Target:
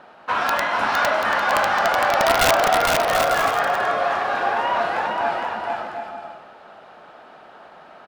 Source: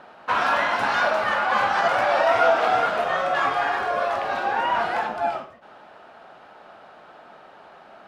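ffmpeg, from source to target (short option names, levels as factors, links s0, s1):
-af "aeval=exprs='(mod(3.35*val(0)+1,2)-1)/3.35':c=same,bandreject=f=60:t=h:w=6,bandreject=f=120:t=h:w=6,aecho=1:1:460|736|901.6|1001|1061:0.631|0.398|0.251|0.158|0.1"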